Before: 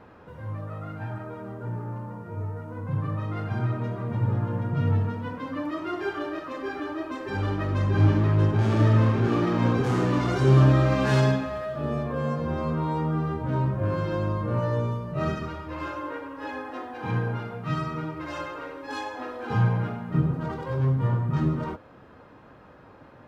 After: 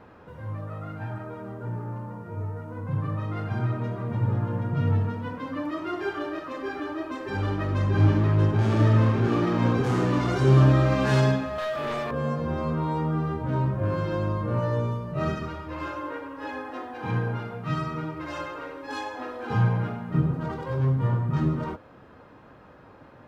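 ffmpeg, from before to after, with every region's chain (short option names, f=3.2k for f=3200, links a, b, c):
-filter_complex "[0:a]asettb=1/sr,asplit=3[a][b][c];[a]atrim=end=11.584[d];[b]atrim=start=11.58:end=12.11,asetpts=PTS-STARTPTS,afade=t=in:d=0.004:c=qsin,afade=t=out:st=0.526:d=0.004:c=qsin,highpass=f=1.2k:p=1,aeval=exprs='0.0531*sin(PI/2*2.51*val(0)/0.0531)':c=same[e];[c]atrim=start=12.106[f];[d][e]acrossfade=d=0.004:c1=hsin:c2=qsin[g];[g][f]acrossfade=d=0.004:c1=qsin:c2=hsin"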